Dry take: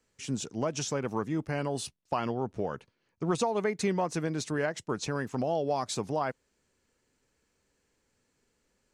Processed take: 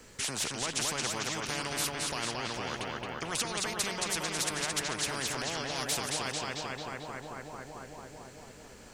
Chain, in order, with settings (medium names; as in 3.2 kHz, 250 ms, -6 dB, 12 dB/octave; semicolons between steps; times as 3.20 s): peak limiter -22 dBFS, peak gain reduction 5.5 dB; filtered feedback delay 222 ms, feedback 61%, low-pass 4.4 kHz, level -4 dB; spectrum-flattening compressor 4:1